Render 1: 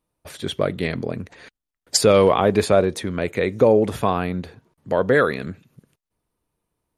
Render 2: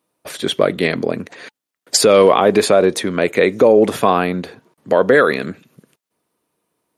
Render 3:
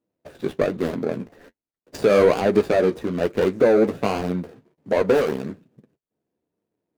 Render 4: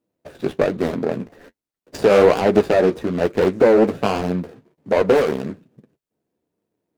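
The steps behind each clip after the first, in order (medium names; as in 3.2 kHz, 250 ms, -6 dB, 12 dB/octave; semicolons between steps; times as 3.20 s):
high-pass 220 Hz 12 dB/octave; band-stop 870 Hz, Q 23; loudness maximiser +9.5 dB; trim -1 dB
median filter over 41 samples; flange 1.2 Hz, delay 8 ms, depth 7.9 ms, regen -35%
loudspeaker Doppler distortion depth 0.35 ms; trim +3 dB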